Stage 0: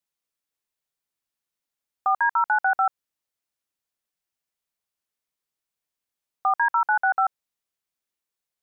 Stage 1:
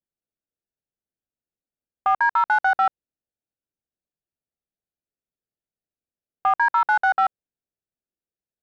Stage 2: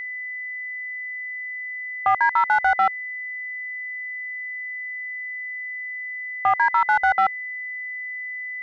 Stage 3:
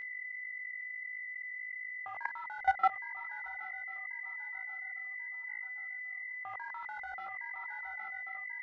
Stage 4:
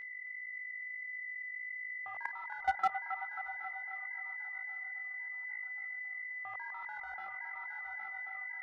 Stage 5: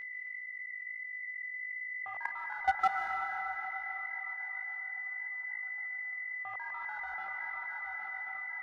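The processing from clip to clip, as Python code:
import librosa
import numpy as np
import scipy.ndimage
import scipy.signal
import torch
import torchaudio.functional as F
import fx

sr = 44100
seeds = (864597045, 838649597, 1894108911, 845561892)

y1 = fx.wiener(x, sr, points=41)
y1 = F.gain(torch.from_numpy(y1), 3.0).numpy()
y2 = fx.low_shelf(y1, sr, hz=250.0, db=9.5)
y2 = y2 + 10.0 ** (-29.0 / 20.0) * np.sin(2.0 * np.pi * 2000.0 * np.arange(len(y2)) / sr)
y3 = fx.echo_swing(y2, sr, ms=1086, ratio=3, feedback_pct=36, wet_db=-14.0)
y3 = fx.chorus_voices(y3, sr, voices=6, hz=1.5, base_ms=19, depth_ms=3.0, mix_pct=40)
y3 = fx.level_steps(y3, sr, step_db=19)
y3 = F.gain(torch.from_numpy(y3), -4.5).numpy()
y4 = np.clip(y3, -10.0 ** (-19.0 / 20.0), 10.0 ** (-19.0 / 20.0))
y4 = fx.echo_wet_bandpass(y4, sr, ms=269, feedback_pct=59, hz=1200.0, wet_db=-9.0)
y4 = F.gain(torch.from_numpy(y4), -3.0).numpy()
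y5 = fx.rev_freeverb(y4, sr, rt60_s=2.9, hf_ratio=0.95, predelay_ms=100, drr_db=5.0)
y5 = F.gain(torch.from_numpy(y5), 2.5).numpy()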